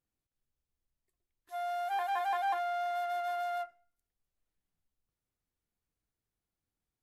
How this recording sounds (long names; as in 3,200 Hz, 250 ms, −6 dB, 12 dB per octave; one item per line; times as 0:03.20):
background noise floor −91 dBFS
spectral slope −0.5 dB per octave